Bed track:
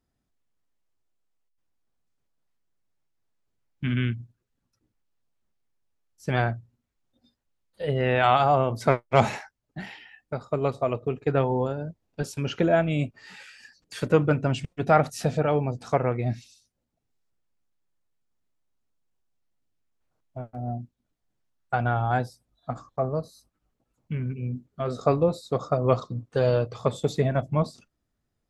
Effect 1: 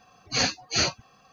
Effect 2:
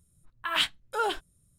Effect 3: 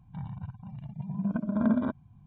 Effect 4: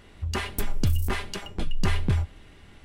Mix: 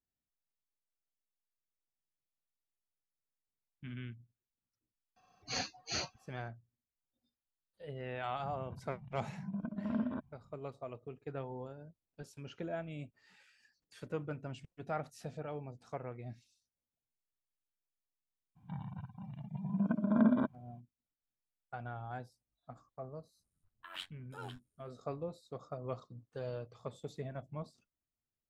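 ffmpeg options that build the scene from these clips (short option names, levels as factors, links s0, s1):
-filter_complex "[3:a]asplit=2[s0][s1];[0:a]volume=0.112[s2];[1:a]equalizer=f=750:w=4.4:g=4.5[s3];[s1]highpass=150[s4];[2:a]tremolo=f=92:d=0.824[s5];[s3]atrim=end=1.32,asetpts=PTS-STARTPTS,volume=0.2,afade=t=in:d=0.004:c=hsin,afade=t=out:st=1.316:d=0.004:c=hsin,adelay=5160[s6];[s0]atrim=end=2.26,asetpts=PTS-STARTPTS,volume=0.316,afade=t=in:d=0.004:c=hsin,afade=t=out:st=2.256:d=0.004:c=hsin,adelay=8290[s7];[s4]atrim=end=2.26,asetpts=PTS-STARTPTS,volume=0.841,afade=t=in:d=0.02,afade=t=out:st=2.24:d=0.02,adelay=18550[s8];[s5]atrim=end=1.58,asetpts=PTS-STARTPTS,volume=0.15,afade=t=in:d=0.004:c=hsin,afade=t=out:st=1.576:d=0.004:c=hsin,adelay=23390[s9];[s2][s6][s7][s8][s9]amix=inputs=5:normalize=0"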